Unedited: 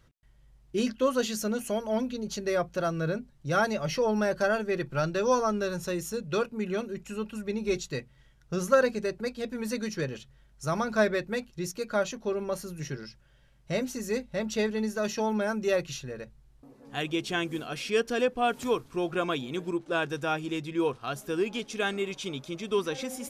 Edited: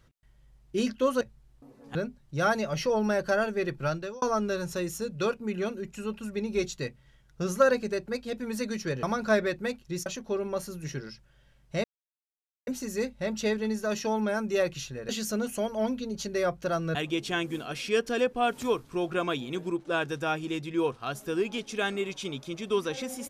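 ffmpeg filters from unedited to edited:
ffmpeg -i in.wav -filter_complex "[0:a]asplit=9[link_01][link_02][link_03][link_04][link_05][link_06][link_07][link_08][link_09];[link_01]atrim=end=1.212[link_10];[link_02]atrim=start=16.218:end=16.962[link_11];[link_03]atrim=start=3.068:end=5.34,asetpts=PTS-STARTPTS,afade=type=out:start_time=1.892:duration=0.38[link_12];[link_04]atrim=start=5.34:end=10.152,asetpts=PTS-STARTPTS,afade=type=in:duration=0.004:curve=hsin[link_13];[link_05]atrim=start=10.708:end=11.742[link_14];[link_06]atrim=start=12.018:end=13.8,asetpts=PTS-STARTPTS,afade=type=out:start_time=1.778:duration=0.004:curve=hsin,apad=pad_dur=0.83[link_15];[link_07]atrim=start=13.8:end=16.222,asetpts=PTS-STARTPTS,afade=type=in:duration=0.004:curve=hsin[link_16];[link_08]atrim=start=1.208:end=3.072[link_17];[link_09]atrim=start=16.958[link_18];[link_10][link_11]acrossfade=duration=0.004:curve1=hsin:curve2=hsin[link_19];[link_12][link_13]concat=n=2:v=0:a=1[link_20];[link_19][link_20]acrossfade=duration=0.004:curve1=hsin:curve2=hsin[link_21];[link_21][link_14]acrossfade=duration=0.004:curve1=hsin:curve2=hsin[link_22];[link_15][link_16]concat=n=2:v=0:a=1[link_23];[link_22][link_23]acrossfade=duration=0.004:curve1=hsin:curve2=hsin[link_24];[link_24][link_17]acrossfade=duration=0.004:curve1=hsin:curve2=hsin[link_25];[link_25][link_18]acrossfade=duration=0.004:curve1=hsin:curve2=hsin" out.wav

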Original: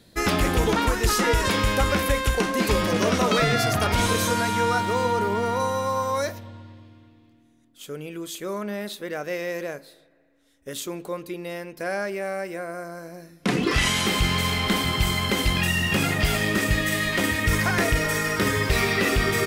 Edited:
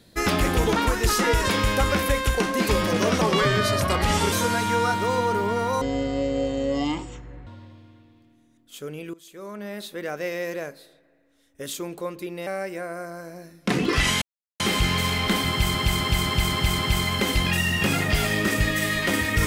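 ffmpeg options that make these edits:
ffmpeg -i in.wav -filter_complex "[0:a]asplit=13[link_01][link_02][link_03][link_04][link_05][link_06][link_07][link_08][link_09][link_10][link_11][link_12][link_13];[link_01]atrim=end=3.214[link_14];[link_02]atrim=start=3.21:end=4.19,asetpts=PTS-STARTPTS,asetrate=38808,aresample=44100,atrim=end_sample=49111,asetpts=PTS-STARTPTS[link_15];[link_03]atrim=start=4.186:end=5.684[link_16];[link_04]atrim=start=5.68:end=6.54,asetpts=PTS-STARTPTS,asetrate=22932,aresample=44100[link_17];[link_05]atrim=start=6.536:end=8.21,asetpts=PTS-STARTPTS,afade=type=out:start_time=1.67:duration=0.004:curve=hsin:silence=0.1[link_18];[link_06]atrim=start=8.21:end=11.542,asetpts=PTS-STARTPTS,afade=type=in:duration=0.9:silence=0.1[link_19];[link_07]atrim=start=12.248:end=14,asetpts=PTS-STARTPTS,afade=type=out:start_time=1.748:duration=0.004:curve=hsin,apad=pad_dur=0.38[link_20];[link_08]atrim=start=14:end=15.152,asetpts=PTS-STARTPTS,afade=type=in:duration=0.004:curve=hsin[link_21];[link_09]atrim=start=14.888:end=15.152[link_22];[link_10]atrim=start=14.888:end=15.152[link_23];[link_11]atrim=start=14.888:end=15.152[link_24];[link_12]atrim=start=14.888:end=15.152[link_25];[link_13]atrim=start=14.888[link_26];[link_14][link_15]acrossfade=duration=0.004:curve1=hsin:curve2=hsin[link_27];[link_27][link_16]acrossfade=duration=0.004:curve1=hsin:curve2=hsin[link_28];[link_28][link_17]acrossfade=duration=0.004:curve1=hsin:curve2=hsin[link_29];[link_18][link_19]concat=n=2:v=0:a=1[link_30];[link_29][link_30]acrossfade=duration=0.004:curve1=hsin:curve2=hsin[link_31];[link_20][link_21]concat=n=2:v=0:a=1[link_32];[link_31][link_32]acrossfade=duration=0.004:curve1=hsin:curve2=hsin[link_33];[link_33][link_22]acrossfade=duration=0.004:curve1=hsin:curve2=hsin[link_34];[link_34][link_23]acrossfade=duration=0.004:curve1=hsin:curve2=hsin[link_35];[link_35][link_24]acrossfade=duration=0.004:curve1=hsin:curve2=hsin[link_36];[link_36][link_25]acrossfade=duration=0.004:curve1=hsin:curve2=hsin[link_37];[link_37][link_26]acrossfade=duration=0.004:curve1=hsin:curve2=hsin" out.wav

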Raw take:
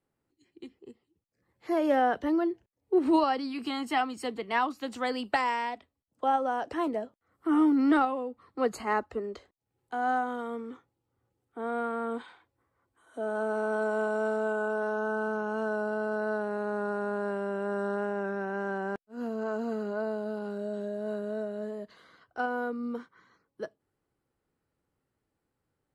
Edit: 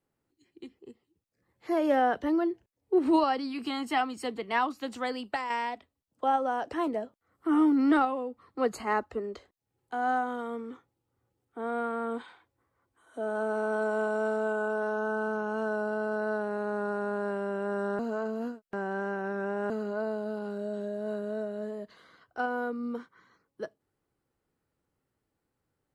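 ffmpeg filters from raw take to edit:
ffmpeg -i in.wav -filter_complex "[0:a]asplit=4[link_01][link_02][link_03][link_04];[link_01]atrim=end=5.5,asetpts=PTS-STARTPTS,afade=type=out:start_time=4.87:duration=0.63:silence=0.421697[link_05];[link_02]atrim=start=5.5:end=17.992,asetpts=PTS-STARTPTS,afade=type=in:duration=0.004:curve=hsin:silence=0.421697[link_06];[link_03]atrim=start=17.988:end=19.702,asetpts=PTS-STARTPTS,areverse[link_07];[link_04]atrim=start=19.698[link_08];[link_05][link_06]concat=n=2:v=0:a=1[link_09];[link_09][link_07]acrossfade=duration=0.004:curve1=hsin:curve2=hsin[link_10];[link_10][link_08]acrossfade=duration=0.004:curve1=hsin:curve2=hsin" out.wav

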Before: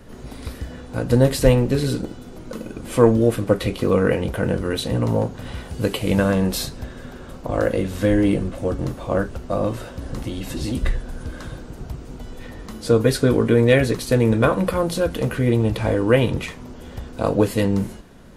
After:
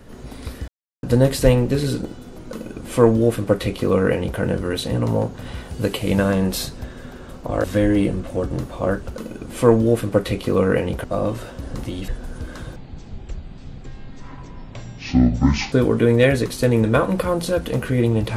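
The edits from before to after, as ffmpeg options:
ffmpeg -i in.wav -filter_complex "[0:a]asplit=9[link_01][link_02][link_03][link_04][link_05][link_06][link_07][link_08][link_09];[link_01]atrim=end=0.68,asetpts=PTS-STARTPTS,afade=type=out:start_time=0.676:duration=0.004:curve=hsin[link_10];[link_02]atrim=start=0.68:end=1.03,asetpts=PTS-STARTPTS,volume=0[link_11];[link_03]atrim=start=1.03:end=7.642,asetpts=PTS-STARTPTS,afade=type=in:duration=0.004:curve=hsin[link_12];[link_04]atrim=start=7.918:end=9.432[link_13];[link_05]atrim=start=2.498:end=4.392[link_14];[link_06]atrim=start=9.428:end=10.472[link_15];[link_07]atrim=start=10.928:end=11.614[link_16];[link_08]atrim=start=11.61:end=13.21,asetpts=PTS-STARTPTS,asetrate=23814,aresample=44100[link_17];[link_09]atrim=start=13.206[link_18];[link_10][link_11][link_12]concat=n=3:v=0:a=1[link_19];[link_19][link_13]acrossfade=duration=0.004:curve1=hsin:curve2=hsin[link_20];[link_20][link_14]acrossfade=duration=0.004:curve1=hsin:curve2=hsin[link_21];[link_21][link_15]acrossfade=duration=0.004:curve1=hsin:curve2=hsin[link_22];[link_22][link_16]acrossfade=duration=0.004:curve1=hsin:curve2=hsin[link_23];[link_23][link_17]acrossfade=duration=0.004:curve1=hsin:curve2=hsin[link_24];[link_24][link_18]acrossfade=duration=0.004:curve1=hsin:curve2=hsin" out.wav

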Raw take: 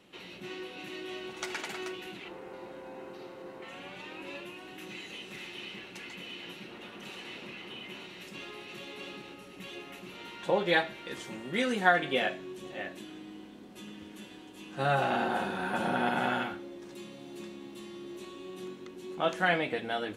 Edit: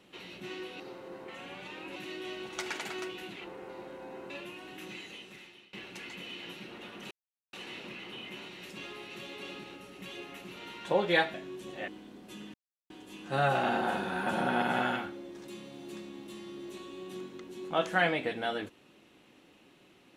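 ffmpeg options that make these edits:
ffmpeg -i in.wav -filter_complex "[0:a]asplit=10[link_01][link_02][link_03][link_04][link_05][link_06][link_07][link_08][link_09][link_10];[link_01]atrim=end=0.802[link_11];[link_02]atrim=start=3.138:end=4.302[link_12];[link_03]atrim=start=0.798:end=3.142[link_13];[link_04]atrim=start=4.298:end=5.73,asetpts=PTS-STARTPTS,afade=type=out:start_time=0.572:duration=0.86:silence=0.0668344[link_14];[link_05]atrim=start=5.73:end=7.11,asetpts=PTS-STARTPTS,afade=type=in:duration=0.004:curve=hsin:silence=0.0668344,afade=type=out:start_time=1.376:duration=0.004:curve=hsin,apad=pad_dur=0.42[link_15];[link_06]atrim=start=7.11:end=10.922,asetpts=PTS-STARTPTS,afade=type=in:duration=0.004:curve=hsin[link_16];[link_07]atrim=start=12.308:end=12.852[link_17];[link_08]atrim=start=13.348:end=14.01,asetpts=PTS-STARTPTS,afade=type=out:start_time=0.658:duration=0.004:curve=hsin[link_18];[link_09]atrim=start=14.01:end=14.37,asetpts=PTS-STARTPTS,volume=0[link_19];[link_10]atrim=start=14.37,asetpts=PTS-STARTPTS,afade=type=in:duration=0.004:curve=hsin[link_20];[link_11][link_12]acrossfade=duration=0.004:curve1=hsin:curve2=hsin[link_21];[link_21][link_13]acrossfade=duration=0.004:curve1=hsin:curve2=hsin[link_22];[link_14][link_15][link_16]concat=n=3:v=0:a=1[link_23];[link_22][link_23]acrossfade=duration=0.004:curve1=hsin:curve2=hsin[link_24];[link_24][link_17]acrossfade=duration=0.004:curve1=hsin:curve2=hsin[link_25];[link_18][link_19][link_20]concat=n=3:v=0:a=1[link_26];[link_25][link_26]acrossfade=duration=0.004:curve1=hsin:curve2=hsin" out.wav

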